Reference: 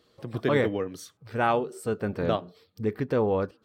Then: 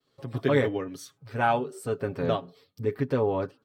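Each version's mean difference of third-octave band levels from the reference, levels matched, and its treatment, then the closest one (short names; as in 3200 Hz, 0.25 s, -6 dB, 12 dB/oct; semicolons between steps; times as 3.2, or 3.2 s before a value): 1.5 dB: comb 7.3 ms, depth 66%; expander -58 dBFS; gain -2 dB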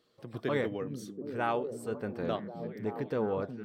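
3.5 dB: bell 62 Hz -14.5 dB 0.69 oct; delay with a stepping band-pass 0.364 s, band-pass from 180 Hz, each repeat 0.7 oct, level -2.5 dB; gain -7 dB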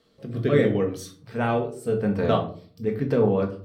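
5.0 dB: rotary speaker horn 0.75 Hz, later 7 Hz, at 2.23; shoebox room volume 360 m³, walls furnished, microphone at 1.6 m; gain +2 dB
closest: first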